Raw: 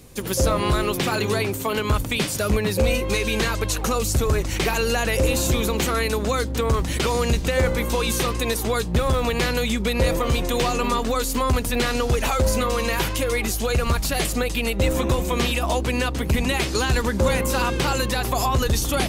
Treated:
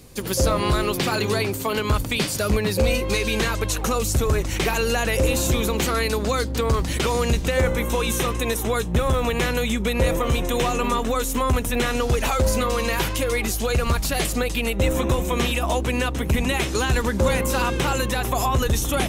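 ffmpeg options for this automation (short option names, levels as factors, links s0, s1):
-af "asetnsamples=n=441:p=0,asendcmd='3.39 equalizer g -3;5.84 equalizer g 4.5;6.93 equalizer g -3.5;7.61 equalizer g -13;12.01 equalizer g -1.5;14.61 equalizer g -9.5;17.01 equalizer g -3.5;17.8 equalizer g -11',equalizer=f=4600:t=o:w=0.22:g=4"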